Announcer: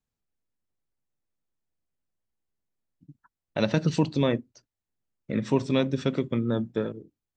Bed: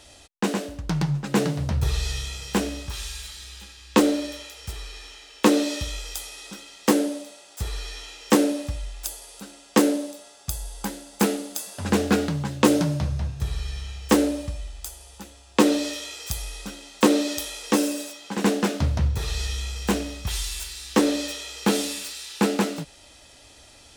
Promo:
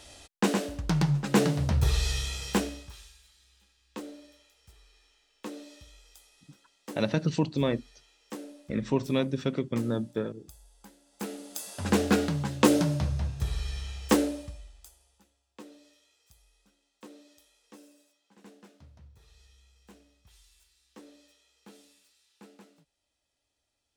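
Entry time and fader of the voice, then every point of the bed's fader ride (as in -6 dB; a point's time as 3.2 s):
3.40 s, -3.0 dB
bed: 2.5 s -1 dB
3.19 s -22.5 dB
10.98 s -22.5 dB
11.7 s -3 dB
14.06 s -3 dB
15.69 s -31.5 dB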